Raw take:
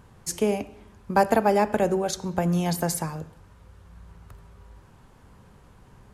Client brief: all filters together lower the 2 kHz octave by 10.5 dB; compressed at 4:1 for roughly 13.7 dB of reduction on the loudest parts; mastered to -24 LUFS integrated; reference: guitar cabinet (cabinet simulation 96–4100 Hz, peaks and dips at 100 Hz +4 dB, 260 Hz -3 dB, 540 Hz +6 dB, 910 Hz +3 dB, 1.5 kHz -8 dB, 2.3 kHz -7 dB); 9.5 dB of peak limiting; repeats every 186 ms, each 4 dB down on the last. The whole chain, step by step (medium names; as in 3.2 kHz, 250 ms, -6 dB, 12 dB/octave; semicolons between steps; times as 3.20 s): peaking EQ 2 kHz -6 dB; compression 4:1, threshold -32 dBFS; peak limiter -27.5 dBFS; cabinet simulation 96–4100 Hz, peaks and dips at 100 Hz +4 dB, 260 Hz -3 dB, 540 Hz +6 dB, 910 Hz +3 dB, 1.5 kHz -8 dB, 2.3 kHz -7 dB; feedback delay 186 ms, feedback 63%, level -4 dB; trim +12.5 dB